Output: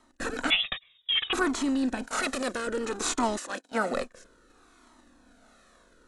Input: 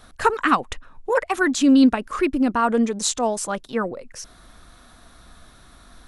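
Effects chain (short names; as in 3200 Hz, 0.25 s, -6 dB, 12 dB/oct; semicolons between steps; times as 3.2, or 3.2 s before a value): per-bin compression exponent 0.4; 3.36–3.93 HPF 690 Hz -> 170 Hz 12 dB/oct; gate -20 dBFS, range -25 dB; 2.05–2.67 tilt +2 dB/oct; vocal rider within 4 dB 0.5 s; rotary speaker horn 1.2 Hz; 0.5–1.33 inverted band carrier 3700 Hz; cascading flanger falling 0.61 Hz; gain -5.5 dB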